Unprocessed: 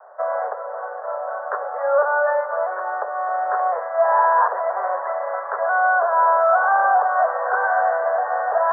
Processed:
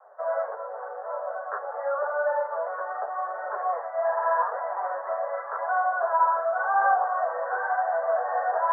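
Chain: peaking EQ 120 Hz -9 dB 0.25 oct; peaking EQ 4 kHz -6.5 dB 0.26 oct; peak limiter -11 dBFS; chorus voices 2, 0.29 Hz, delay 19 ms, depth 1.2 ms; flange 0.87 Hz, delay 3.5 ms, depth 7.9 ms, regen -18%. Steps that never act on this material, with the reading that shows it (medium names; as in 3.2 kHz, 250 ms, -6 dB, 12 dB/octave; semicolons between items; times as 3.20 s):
peaking EQ 120 Hz: input has nothing below 400 Hz; peaking EQ 4 kHz: input has nothing above 1.8 kHz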